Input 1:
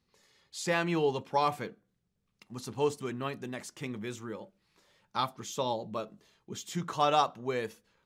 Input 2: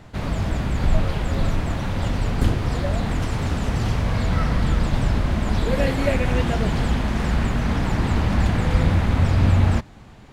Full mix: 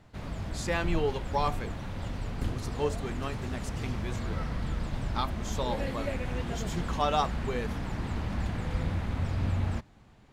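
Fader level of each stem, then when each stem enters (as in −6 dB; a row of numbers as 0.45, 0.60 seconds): −1.5, −12.5 decibels; 0.00, 0.00 seconds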